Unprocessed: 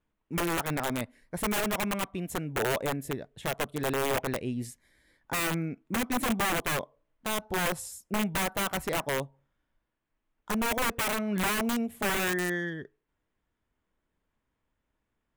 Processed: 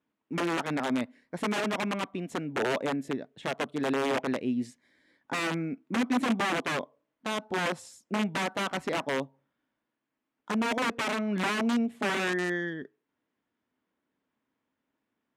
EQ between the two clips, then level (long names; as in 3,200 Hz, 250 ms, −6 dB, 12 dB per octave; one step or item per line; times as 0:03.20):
band-pass filter 180–5,400 Hz
parametric band 260 Hz +7 dB 0.46 octaves
0.0 dB